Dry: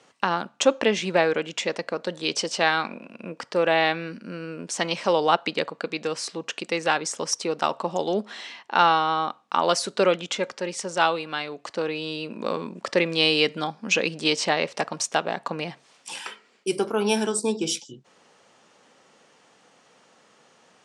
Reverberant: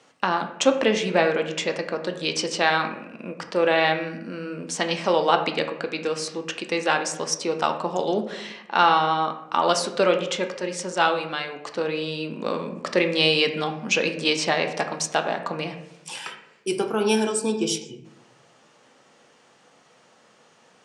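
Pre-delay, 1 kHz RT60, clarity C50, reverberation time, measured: 8 ms, 0.70 s, 9.5 dB, 0.85 s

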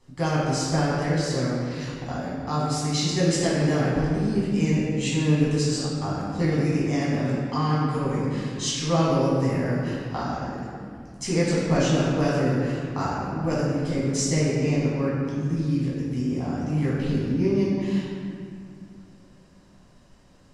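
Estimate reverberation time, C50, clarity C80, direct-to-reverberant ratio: 2.3 s, -1.5 dB, 0.0 dB, -8.0 dB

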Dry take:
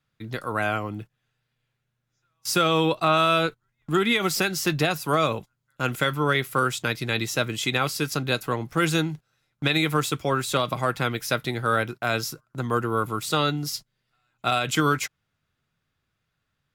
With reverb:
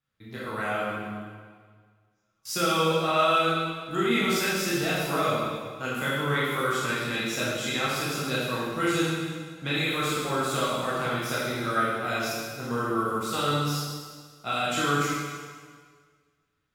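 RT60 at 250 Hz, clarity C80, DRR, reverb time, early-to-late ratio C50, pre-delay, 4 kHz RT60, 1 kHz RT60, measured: 1.7 s, 0.0 dB, -8.0 dB, 1.7 s, -2.5 dB, 6 ms, 1.6 s, 1.7 s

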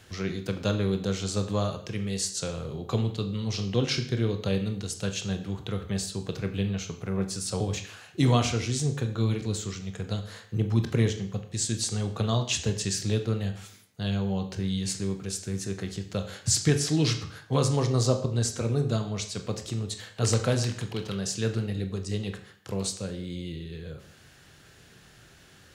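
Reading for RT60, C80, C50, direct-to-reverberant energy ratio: 0.55 s, 13.0 dB, 11.0 dB, 6.0 dB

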